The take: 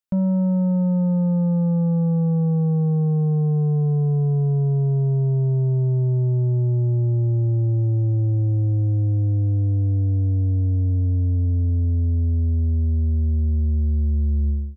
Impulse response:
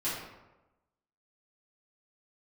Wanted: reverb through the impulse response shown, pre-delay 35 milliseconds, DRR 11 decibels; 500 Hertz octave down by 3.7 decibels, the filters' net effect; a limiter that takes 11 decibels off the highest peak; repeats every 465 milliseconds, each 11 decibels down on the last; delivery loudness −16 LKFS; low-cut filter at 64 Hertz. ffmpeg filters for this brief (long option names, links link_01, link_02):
-filter_complex "[0:a]highpass=64,equalizer=frequency=500:width_type=o:gain=-4.5,alimiter=level_in=2.5dB:limit=-24dB:level=0:latency=1,volume=-2.5dB,aecho=1:1:465|930|1395:0.282|0.0789|0.0221,asplit=2[link_01][link_02];[1:a]atrim=start_sample=2205,adelay=35[link_03];[link_02][link_03]afir=irnorm=-1:irlink=0,volume=-17.5dB[link_04];[link_01][link_04]amix=inputs=2:normalize=0,volume=15dB"